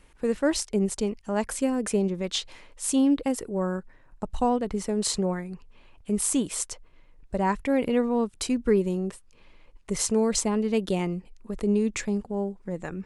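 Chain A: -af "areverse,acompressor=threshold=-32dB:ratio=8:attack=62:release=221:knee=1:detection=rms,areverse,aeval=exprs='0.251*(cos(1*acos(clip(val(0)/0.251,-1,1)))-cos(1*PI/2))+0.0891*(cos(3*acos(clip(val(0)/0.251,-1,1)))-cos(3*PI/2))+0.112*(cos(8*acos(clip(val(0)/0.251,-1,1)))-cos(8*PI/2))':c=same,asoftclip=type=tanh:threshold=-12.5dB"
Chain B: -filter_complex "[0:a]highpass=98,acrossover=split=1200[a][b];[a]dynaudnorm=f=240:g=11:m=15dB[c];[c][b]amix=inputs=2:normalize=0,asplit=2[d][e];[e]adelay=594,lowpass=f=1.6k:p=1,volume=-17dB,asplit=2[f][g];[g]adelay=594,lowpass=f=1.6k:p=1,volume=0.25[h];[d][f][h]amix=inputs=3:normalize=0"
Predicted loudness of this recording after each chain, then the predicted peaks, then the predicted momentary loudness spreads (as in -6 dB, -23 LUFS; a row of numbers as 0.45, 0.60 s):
-32.5, -16.0 LUFS; -13.0, -1.5 dBFS; 8, 17 LU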